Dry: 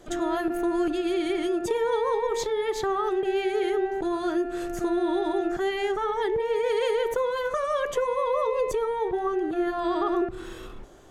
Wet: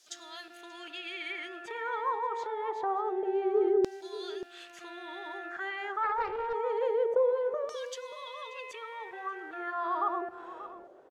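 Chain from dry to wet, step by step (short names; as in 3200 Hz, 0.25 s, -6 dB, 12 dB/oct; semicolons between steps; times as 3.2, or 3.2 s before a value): low shelf 240 Hz -6 dB; in parallel at -9.5 dB: requantised 8-bit, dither triangular; on the sum: LFO band-pass saw down 0.26 Hz 370–5400 Hz; outdoor echo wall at 100 m, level -14 dB; 6.03–6.53 Doppler distortion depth 0.3 ms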